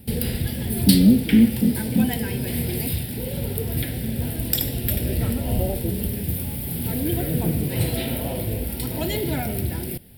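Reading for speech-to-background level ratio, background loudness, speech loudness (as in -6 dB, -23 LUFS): 6.5 dB, -25.5 LUFS, -19.0 LUFS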